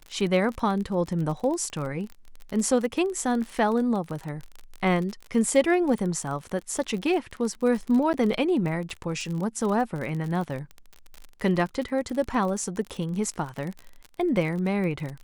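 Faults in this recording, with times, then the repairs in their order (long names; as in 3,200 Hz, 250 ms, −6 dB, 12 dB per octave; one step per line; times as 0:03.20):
surface crackle 38 per second −31 dBFS
0:08.13–0:08.14: drop-out 9.7 ms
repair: click removal
repair the gap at 0:08.13, 9.7 ms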